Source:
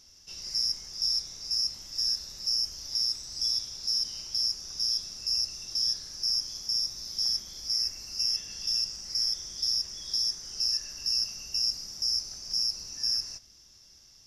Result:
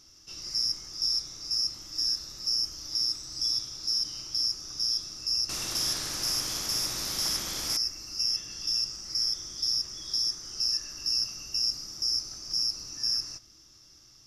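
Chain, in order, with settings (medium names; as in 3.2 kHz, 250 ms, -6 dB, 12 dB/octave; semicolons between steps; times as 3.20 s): graphic EQ with 31 bands 125 Hz +7 dB, 315 Hz +11 dB, 1.25 kHz +8 dB; 5.49–7.77 s: spectrum-flattening compressor 2:1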